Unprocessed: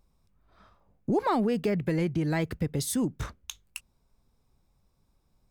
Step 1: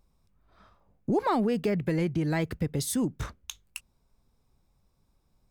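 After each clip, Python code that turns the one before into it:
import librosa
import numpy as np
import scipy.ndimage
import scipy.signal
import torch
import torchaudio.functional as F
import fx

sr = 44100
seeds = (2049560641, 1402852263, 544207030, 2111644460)

y = x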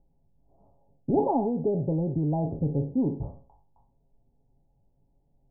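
y = fx.spec_trails(x, sr, decay_s=0.45)
y = scipy.signal.sosfilt(scipy.signal.cheby1(6, 1.0, 870.0, 'lowpass', fs=sr, output='sos'), y)
y = y + 0.47 * np.pad(y, (int(7.3 * sr / 1000.0), 0))[:len(y)]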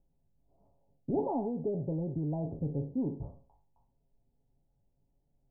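y = fx.notch(x, sr, hz=820.0, q=25.0)
y = F.gain(torch.from_numpy(y), -7.0).numpy()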